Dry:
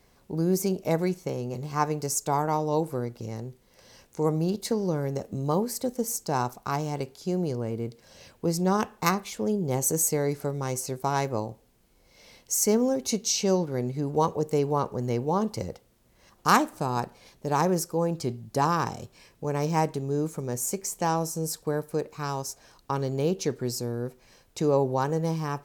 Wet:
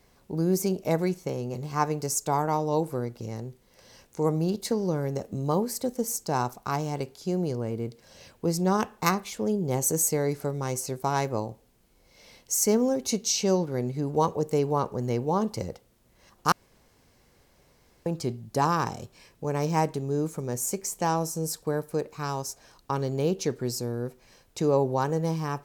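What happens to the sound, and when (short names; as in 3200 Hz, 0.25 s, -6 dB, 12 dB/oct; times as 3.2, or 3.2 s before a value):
16.52–18.06 room tone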